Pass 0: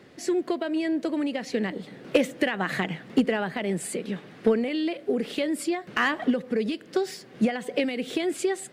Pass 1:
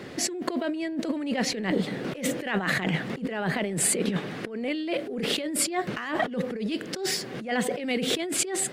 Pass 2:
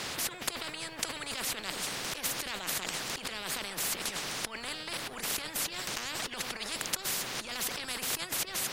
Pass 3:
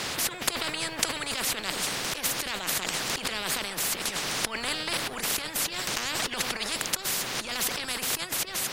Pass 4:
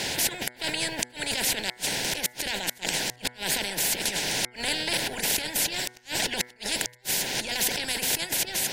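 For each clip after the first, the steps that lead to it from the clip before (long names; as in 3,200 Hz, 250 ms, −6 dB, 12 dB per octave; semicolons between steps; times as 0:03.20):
compressor whose output falls as the input rises −34 dBFS, ratio −1; level +5 dB
every bin compressed towards the loudest bin 10 to 1
speech leveller 0.5 s; level +5.5 dB
Butterworth band-reject 1,200 Hz, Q 2.4; gate with flip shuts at −14 dBFS, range −34 dB; hum removal 122.8 Hz, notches 18; level +3 dB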